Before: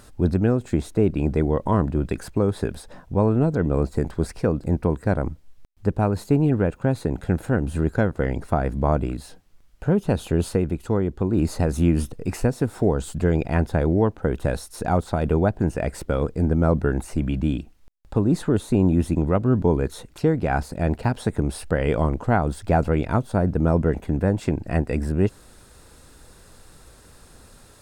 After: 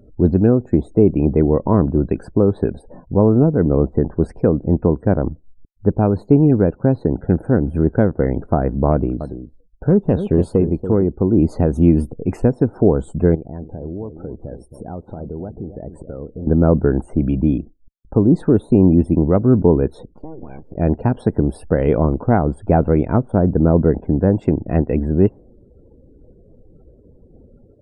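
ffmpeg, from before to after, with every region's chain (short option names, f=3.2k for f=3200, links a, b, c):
-filter_complex "[0:a]asettb=1/sr,asplit=3[a][b][c];[a]atrim=end=8.924[d];[b]atrim=start=8.92:end=11.13,asetpts=PTS-STARTPTS,afade=t=in:d=0.004:c=qsin,afade=t=out:st=2.206:d=0.004:c=qsin,volume=12dB,asoftclip=hard,volume=-12dB,aecho=1:1:285:0.299,atrim=end_sample=97461[e];[c]atrim=start=11.126[f];[d][e]acrossfade=d=0.004:c1=hsin:c2=qsin[g];[g][f]acrossfade=d=0.004:c1=qsin:c2=hsin,asettb=1/sr,asplit=3[h][i][j];[h]atrim=end=13.354[k];[i]atrim=start=13.35:end=16.47,asetpts=PTS-STARTPTS,afade=t=in:d=0.004:c=qsin,afade=t=out:st=3.116:d=0.004:c=qsin,equalizer=f=3.2k:w=0.74:g=-5.5,acompressor=threshold=-36dB:ratio=3:attack=3.2:release=140:knee=1:detection=peak,asplit=2[l][m];[m]adelay=271,lowpass=f=1.1k:p=1,volume=-9.5dB,asplit=2[n][o];[o]adelay=271,lowpass=f=1.1k:p=1,volume=0.16[p];[l][n][p]amix=inputs=3:normalize=0,atrim=end_sample=137592[q];[j]atrim=start=16.466[r];[k][q]acrossfade=d=0.004:c1=hsin:c2=qsin[s];[s][r]acrossfade=d=0.004:c1=qsin:c2=hsin,asettb=1/sr,asplit=3[t][u][v];[t]atrim=end=20.124[w];[u]atrim=start=20.12:end=20.76,asetpts=PTS-STARTPTS,afade=t=in:d=0.004:c=qsin,afade=t=out:st=0.636:d=0.004:c=qsin,acompressor=threshold=-32dB:ratio=8:attack=3.2:release=140:knee=1:detection=peak,bandreject=f=690:w=9.7,aeval=exprs='abs(val(0))':c=same[x];[v]atrim=start=20.756[y];[w][x]acrossfade=d=0.004:c1=hsin:c2=qsin[z];[z][y]acrossfade=d=0.004:c1=qsin:c2=hsin,equalizer=f=360:w=0.37:g=12.5,afftdn=nr=36:nf=-38,lowshelf=f=150:g=7.5,volume=-6dB"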